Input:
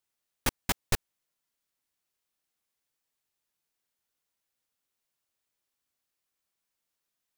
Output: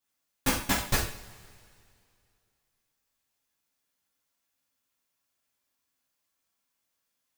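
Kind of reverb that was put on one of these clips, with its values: two-slope reverb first 0.48 s, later 2.4 s, from -21 dB, DRR -7.5 dB; gain -4 dB

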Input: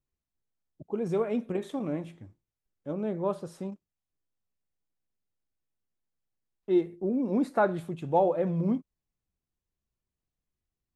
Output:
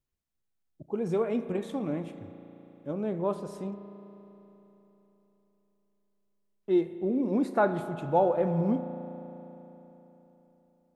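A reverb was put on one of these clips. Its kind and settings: spring tank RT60 3.7 s, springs 35 ms, chirp 45 ms, DRR 10 dB

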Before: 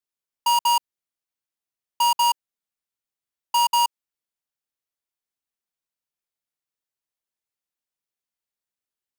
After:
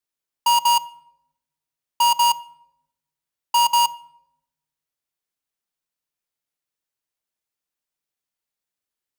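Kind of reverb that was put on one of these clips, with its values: shoebox room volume 3000 m³, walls furnished, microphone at 0.46 m; gain +2.5 dB

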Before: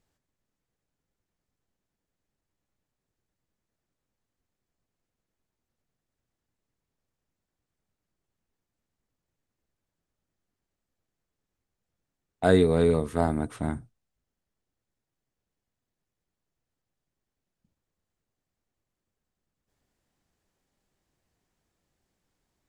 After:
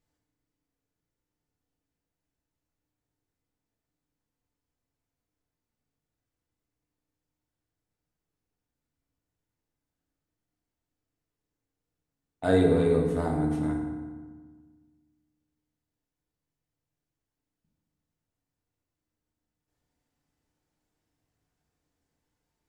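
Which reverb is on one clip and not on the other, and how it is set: FDN reverb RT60 1.5 s, low-frequency decay 1.3×, high-frequency decay 0.6×, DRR -1 dB; gain -6.5 dB

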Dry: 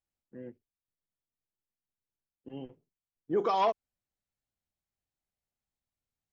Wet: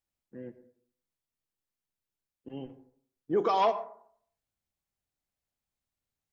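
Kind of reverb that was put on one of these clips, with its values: plate-style reverb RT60 0.6 s, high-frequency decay 0.35×, pre-delay 75 ms, DRR 14 dB; gain +1.5 dB

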